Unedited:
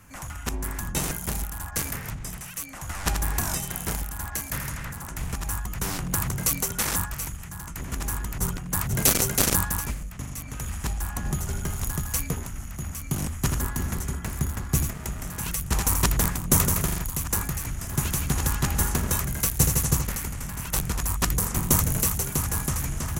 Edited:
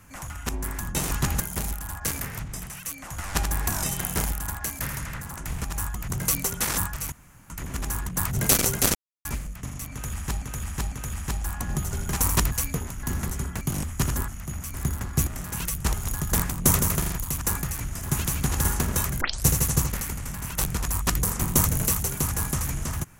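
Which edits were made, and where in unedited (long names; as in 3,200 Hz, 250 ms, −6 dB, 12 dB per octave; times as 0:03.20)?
0:03.57–0:04.21: clip gain +3 dB
0:05.81–0:06.28: remove
0:07.30–0:07.68: fill with room tone
0:08.27–0:08.65: remove
0:09.51–0:09.81: silence
0:10.48–0:10.98: repeat, 3 plays
0:11.69–0:12.08: swap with 0:15.79–0:16.18
0:12.59–0:13.05: swap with 0:13.72–0:14.30
0:14.83–0:15.13: remove
0:18.51–0:18.80: move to 0:01.11
0:19.36: tape start 0.25 s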